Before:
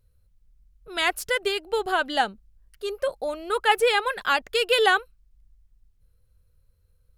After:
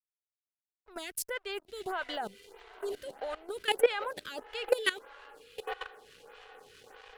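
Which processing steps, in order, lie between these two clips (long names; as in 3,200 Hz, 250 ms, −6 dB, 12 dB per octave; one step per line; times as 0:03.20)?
on a send: feedback delay with all-pass diffusion 940 ms, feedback 55%, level −14 dB
on the sum: dead-zone distortion −45 dBFS
output level in coarse steps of 18 dB
phaser with staggered stages 1.6 Hz
level +3 dB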